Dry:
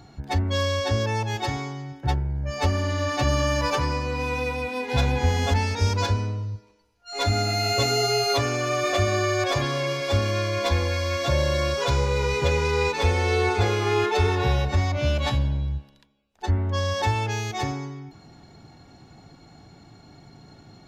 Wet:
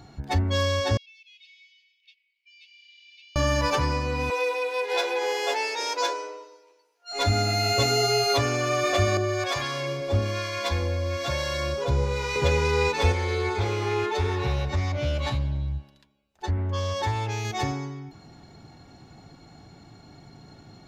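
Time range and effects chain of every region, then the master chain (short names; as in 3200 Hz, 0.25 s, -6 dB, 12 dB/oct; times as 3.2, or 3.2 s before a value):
0.97–3.36 steep high-pass 2300 Hz 96 dB/oct + compressor 2.5:1, threshold -45 dBFS + air absorption 330 m
4.3–7.12 steep high-pass 330 Hz 72 dB/oct + doubler 14 ms -6 dB
9.17–12.36 harmonic tremolo 1.1 Hz, crossover 740 Hz + hard clip -15 dBFS
13.12–17.45 compressor 1.5:1, threshold -27 dBFS + notch comb 240 Hz + Doppler distortion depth 0.14 ms
whole clip: dry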